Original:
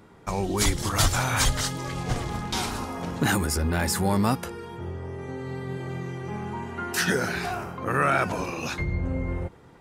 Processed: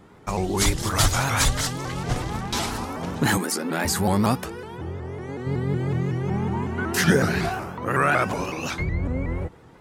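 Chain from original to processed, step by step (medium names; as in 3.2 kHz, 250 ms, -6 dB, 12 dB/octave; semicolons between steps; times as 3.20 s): 3.37–3.85 s: brick-wall FIR high-pass 170 Hz; 5.46–7.49 s: bass shelf 390 Hz +8.5 dB; vibrato with a chosen wave saw up 5.4 Hz, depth 160 cents; trim +2 dB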